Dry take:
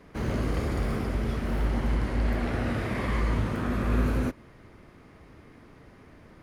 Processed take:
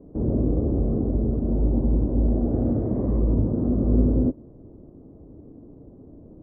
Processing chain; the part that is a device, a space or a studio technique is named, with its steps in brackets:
0:02.52–0:03.18: parametric band 4,700 Hz +10.5 dB 2.1 octaves
under water (low-pass filter 600 Hz 24 dB per octave; parametric band 290 Hz +5.5 dB 0.51 octaves)
level +5 dB

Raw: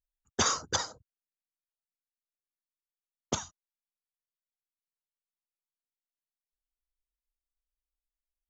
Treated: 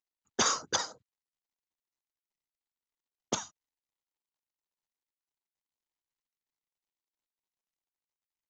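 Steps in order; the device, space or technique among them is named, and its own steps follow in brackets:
Bluetooth headset (high-pass filter 180 Hz 12 dB per octave; downsampling to 16,000 Hz; SBC 64 kbit/s 16,000 Hz)

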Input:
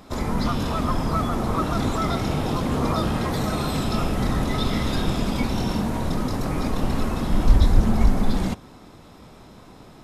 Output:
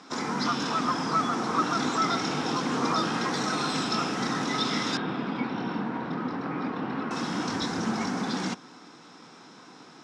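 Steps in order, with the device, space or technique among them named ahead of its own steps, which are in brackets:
television speaker (loudspeaker in its box 190–7,800 Hz, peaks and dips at 210 Hz −6 dB, 390 Hz −4 dB, 600 Hz −10 dB, 1,500 Hz +5 dB, 5,600 Hz +8 dB)
0:04.97–0:07.11: high-frequency loss of the air 420 metres

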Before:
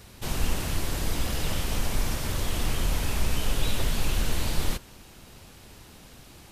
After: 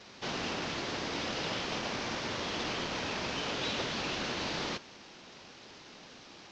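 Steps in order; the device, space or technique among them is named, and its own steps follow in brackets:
early wireless headset (high-pass filter 240 Hz 12 dB per octave; variable-slope delta modulation 32 kbit/s)

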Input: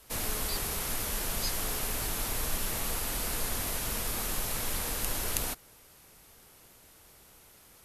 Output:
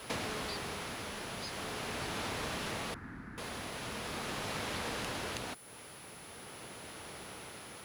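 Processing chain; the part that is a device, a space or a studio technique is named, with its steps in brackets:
medium wave at night (band-pass filter 110–4,000 Hz; downward compressor 6 to 1, threshold −50 dBFS, peak gain reduction 15 dB; amplitude tremolo 0.42 Hz, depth 40%; steady tone 10,000 Hz −68 dBFS; white noise bed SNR 21 dB)
0:02.94–0:03.38: drawn EQ curve 280 Hz 0 dB, 540 Hz −20 dB, 1,700 Hz −3 dB, 2,900 Hz −26 dB
level +14 dB

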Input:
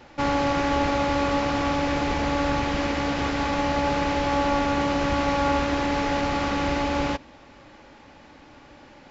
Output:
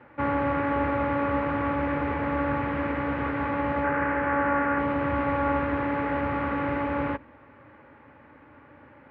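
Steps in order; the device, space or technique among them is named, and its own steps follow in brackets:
0:03.84–0:04.79: graphic EQ with 15 bands 100 Hz −9 dB, 1,600 Hz +8 dB, 4,000 Hz −10 dB
sub-octave bass pedal (sub-octave generator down 2 octaves, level −6 dB; loudspeaker in its box 82–2,000 Hz, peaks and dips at 190 Hz −9 dB, 360 Hz −5 dB, 730 Hz −9 dB)

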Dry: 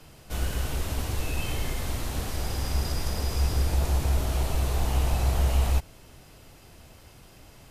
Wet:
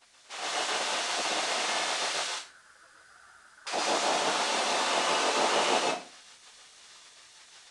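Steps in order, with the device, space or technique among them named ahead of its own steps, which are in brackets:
0:02.27–0:03.67: elliptic band-pass filter 190–1,100 Hz, stop band 40 dB
gate on every frequency bin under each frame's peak −25 dB weak
filmed off a television (band-pass filter 290–6,400 Hz; parametric band 710 Hz +9 dB 0.29 octaves; convolution reverb RT60 0.40 s, pre-delay 109 ms, DRR −1.5 dB; white noise bed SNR 29 dB; automatic gain control gain up to 5.5 dB; level +1.5 dB; AAC 96 kbit/s 22,050 Hz)

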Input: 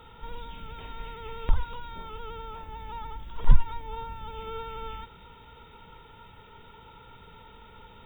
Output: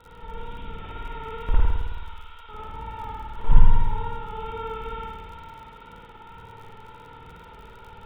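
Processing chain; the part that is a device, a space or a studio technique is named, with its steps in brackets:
lo-fi chain (low-pass filter 3,200 Hz 12 dB per octave; tape wow and flutter; surface crackle 44 per second −39 dBFS)
0:01.65–0:02.49: Bessel high-pass filter 2,600 Hz, order 2
echo with a time of its own for lows and highs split 610 Hz, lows 118 ms, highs 427 ms, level −12 dB
spring reverb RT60 1.4 s, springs 54 ms, chirp 45 ms, DRR −7 dB
level −3 dB

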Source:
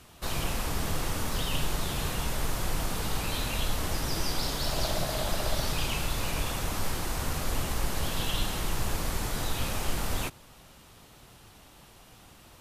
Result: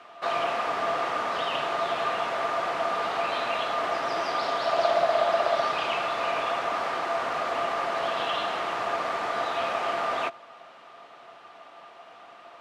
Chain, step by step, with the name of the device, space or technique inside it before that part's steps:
tin-can telephone (band-pass filter 540–2,300 Hz; hollow resonant body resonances 680/1,200 Hz, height 14 dB, ringing for 90 ms)
level +8 dB

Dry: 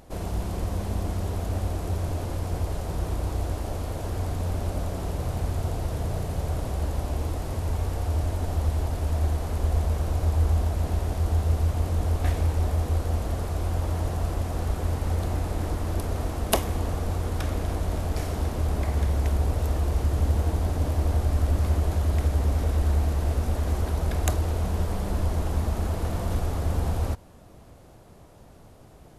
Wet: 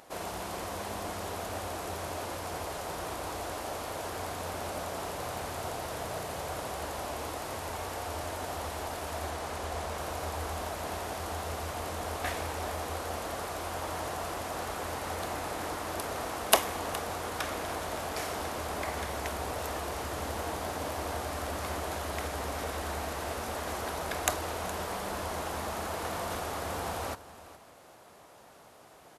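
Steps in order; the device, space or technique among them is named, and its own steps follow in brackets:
0:09.29–0:09.98: Bessel low-pass filter 11,000 Hz
filter by subtraction (in parallel: low-pass filter 1,200 Hz 12 dB per octave + polarity inversion)
on the sum: single-tap delay 416 ms −16.5 dB
level +2 dB

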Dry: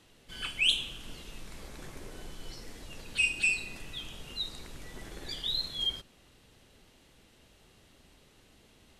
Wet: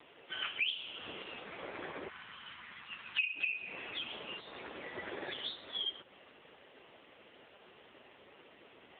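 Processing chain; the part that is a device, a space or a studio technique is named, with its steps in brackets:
0:02.08–0:03.35: elliptic band-stop filter 210–990 Hz, stop band 80 dB
voicemail (band-pass filter 390–2,900 Hz; downward compressor 8 to 1, threshold −42 dBFS, peak gain reduction 17 dB; level +12 dB; AMR narrowband 5.9 kbit/s 8,000 Hz)

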